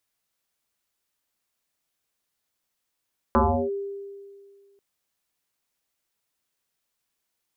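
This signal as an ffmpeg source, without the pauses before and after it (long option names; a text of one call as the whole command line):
ffmpeg -f lavfi -i "aevalsrc='0.188*pow(10,-3*t/1.98)*sin(2*PI*398*t+5.6*clip(1-t/0.35,0,1)*sin(2*PI*0.39*398*t))':duration=1.44:sample_rate=44100" out.wav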